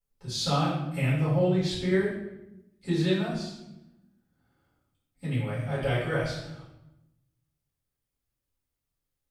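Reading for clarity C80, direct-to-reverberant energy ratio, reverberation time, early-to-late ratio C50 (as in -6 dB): 5.0 dB, -11.0 dB, 0.95 s, 1.5 dB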